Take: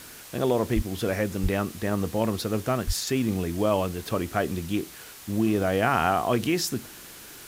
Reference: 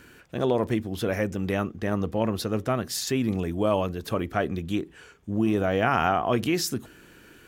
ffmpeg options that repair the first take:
-filter_complex "[0:a]asplit=3[a][b][c];[a]afade=t=out:st=0.75:d=0.02[d];[b]highpass=f=140:w=0.5412,highpass=f=140:w=1.3066,afade=t=in:st=0.75:d=0.02,afade=t=out:st=0.87:d=0.02[e];[c]afade=t=in:st=0.87:d=0.02[f];[d][e][f]amix=inputs=3:normalize=0,asplit=3[g][h][i];[g]afade=t=out:st=1.42:d=0.02[j];[h]highpass=f=140:w=0.5412,highpass=f=140:w=1.3066,afade=t=in:st=1.42:d=0.02,afade=t=out:st=1.54:d=0.02[k];[i]afade=t=in:st=1.54:d=0.02[l];[j][k][l]amix=inputs=3:normalize=0,asplit=3[m][n][o];[m]afade=t=out:st=2.86:d=0.02[p];[n]highpass=f=140:w=0.5412,highpass=f=140:w=1.3066,afade=t=in:st=2.86:d=0.02,afade=t=out:st=2.98:d=0.02[q];[o]afade=t=in:st=2.98:d=0.02[r];[p][q][r]amix=inputs=3:normalize=0,afwtdn=0.0063"

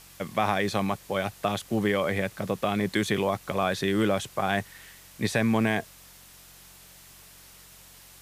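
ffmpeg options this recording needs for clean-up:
-af "adeclick=t=4,bandreject=f=45.7:t=h:w=4,bandreject=f=91.4:t=h:w=4,bandreject=f=137.1:t=h:w=4,bandreject=f=182.8:t=h:w=4,afwtdn=0.0032"

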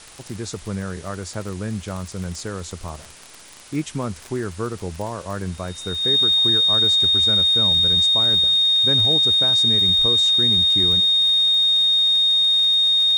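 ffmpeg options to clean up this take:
-af "adeclick=t=4,bandreject=f=3.7k:w=30,afwtdn=0.0079"

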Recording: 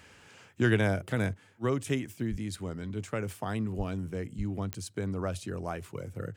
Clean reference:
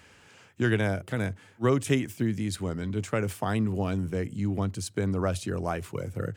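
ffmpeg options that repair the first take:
-filter_complex "[0:a]adeclick=t=4,asplit=3[a][b][c];[a]afade=t=out:st=2.3:d=0.02[d];[b]highpass=f=140:w=0.5412,highpass=f=140:w=1.3066,afade=t=in:st=2.3:d=0.02,afade=t=out:st=2.42:d=0.02[e];[c]afade=t=in:st=2.42:d=0.02[f];[d][e][f]amix=inputs=3:normalize=0,asplit=3[g][h][i];[g]afade=t=out:st=3.77:d=0.02[j];[h]highpass=f=140:w=0.5412,highpass=f=140:w=1.3066,afade=t=in:st=3.77:d=0.02,afade=t=out:st=3.89:d=0.02[k];[i]afade=t=in:st=3.89:d=0.02[l];[j][k][l]amix=inputs=3:normalize=0,asplit=3[m][n][o];[m]afade=t=out:st=4.37:d=0.02[p];[n]highpass=f=140:w=0.5412,highpass=f=140:w=1.3066,afade=t=in:st=4.37:d=0.02,afade=t=out:st=4.49:d=0.02[q];[o]afade=t=in:st=4.49:d=0.02[r];[p][q][r]amix=inputs=3:normalize=0,asetnsamples=n=441:p=0,asendcmd='1.34 volume volume 5.5dB',volume=0dB"

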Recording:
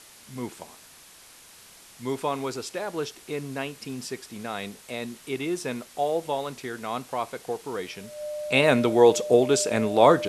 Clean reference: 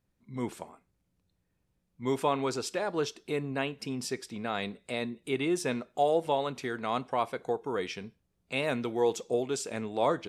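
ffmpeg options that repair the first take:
-af "bandreject=f=600:w=30,afwtdn=0.004,asetnsamples=n=441:p=0,asendcmd='8.18 volume volume -10.5dB',volume=0dB"

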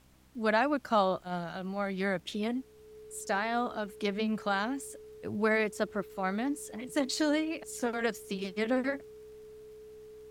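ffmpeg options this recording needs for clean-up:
-af "adeclick=t=4,bandreject=f=63.9:t=h:w=4,bandreject=f=127.8:t=h:w=4,bandreject=f=191.7:t=h:w=4,bandreject=f=255.6:t=h:w=4,bandreject=f=319.5:t=h:w=4,bandreject=f=430:w=30,agate=range=-21dB:threshold=-42dB"

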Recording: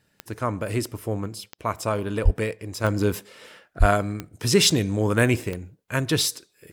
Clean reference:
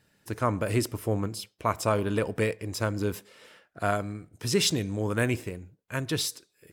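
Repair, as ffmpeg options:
-filter_complex "[0:a]adeclick=t=4,asplit=3[a][b][c];[a]afade=t=out:st=2.24:d=0.02[d];[b]highpass=f=140:w=0.5412,highpass=f=140:w=1.3066,afade=t=in:st=2.24:d=0.02,afade=t=out:st=2.36:d=0.02[e];[c]afade=t=in:st=2.36:d=0.02[f];[d][e][f]amix=inputs=3:normalize=0,asplit=3[g][h][i];[g]afade=t=out:st=3.79:d=0.02[j];[h]highpass=f=140:w=0.5412,highpass=f=140:w=1.3066,afade=t=in:st=3.79:d=0.02,afade=t=out:st=3.91:d=0.02[k];[i]afade=t=in:st=3.91:d=0.02[l];[j][k][l]amix=inputs=3:normalize=0,asetnsamples=n=441:p=0,asendcmd='2.84 volume volume -6.5dB',volume=0dB"

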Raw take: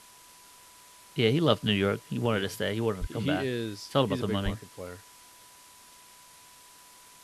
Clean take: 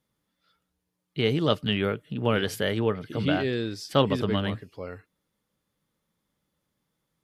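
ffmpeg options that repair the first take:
-filter_complex "[0:a]bandreject=f=990:w=30,asplit=3[a][b][c];[a]afade=t=out:st=3:d=0.02[d];[b]highpass=f=140:w=0.5412,highpass=f=140:w=1.3066,afade=t=in:st=3:d=0.02,afade=t=out:st=3.12:d=0.02[e];[c]afade=t=in:st=3.12:d=0.02[f];[d][e][f]amix=inputs=3:normalize=0,asplit=3[g][h][i];[g]afade=t=out:st=4.44:d=0.02[j];[h]highpass=f=140:w=0.5412,highpass=f=140:w=1.3066,afade=t=in:st=4.44:d=0.02,afade=t=out:st=4.56:d=0.02[k];[i]afade=t=in:st=4.56:d=0.02[l];[j][k][l]amix=inputs=3:normalize=0,afwtdn=0.0025,asetnsamples=n=441:p=0,asendcmd='2.26 volume volume 3.5dB',volume=0dB"

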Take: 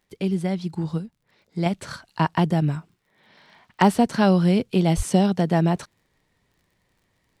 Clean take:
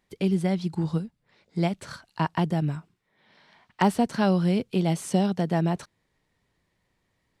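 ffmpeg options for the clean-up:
-filter_complex "[0:a]adeclick=t=4,asplit=3[a][b][c];[a]afade=t=out:st=4.96:d=0.02[d];[b]highpass=f=140:w=0.5412,highpass=f=140:w=1.3066,afade=t=in:st=4.96:d=0.02,afade=t=out:st=5.08:d=0.02[e];[c]afade=t=in:st=5.08:d=0.02[f];[d][e][f]amix=inputs=3:normalize=0,asetnsamples=n=441:p=0,asendcmd='1.66 volume volume -4.5dB',volume=0dB"

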